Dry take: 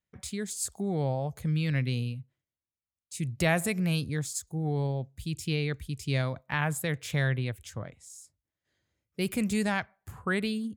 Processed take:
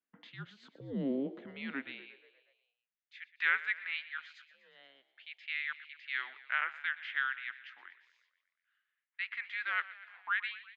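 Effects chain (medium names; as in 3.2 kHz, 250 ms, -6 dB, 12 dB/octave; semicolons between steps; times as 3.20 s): mistuned SSB -270 Hz 430–3600 Hz; high-pass sweep 210 Hz -> 1.7 kHz, 1.67–2.61 s; frequency-shifting echo 120 ms, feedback 64%, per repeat +46 Hz, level -17 dB; trim -4 dB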